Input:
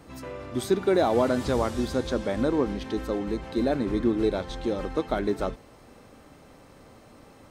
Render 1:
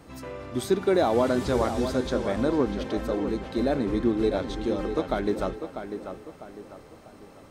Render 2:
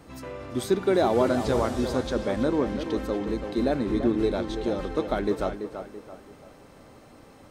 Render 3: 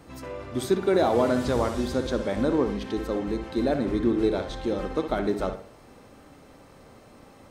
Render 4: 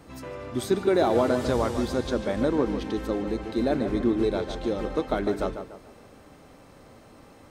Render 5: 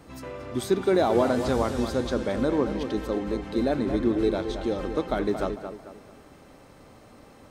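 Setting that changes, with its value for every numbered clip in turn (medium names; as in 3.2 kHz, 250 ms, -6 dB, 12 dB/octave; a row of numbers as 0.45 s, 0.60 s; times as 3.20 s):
tape echo, time: 647 ms, 335 ms, 62 ms, 146 ms, 223 ms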